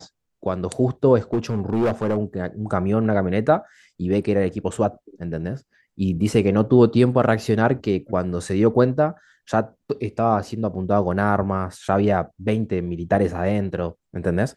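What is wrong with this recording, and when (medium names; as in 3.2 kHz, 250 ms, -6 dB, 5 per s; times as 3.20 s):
1.33–2.18 s: clipped -16 dBFS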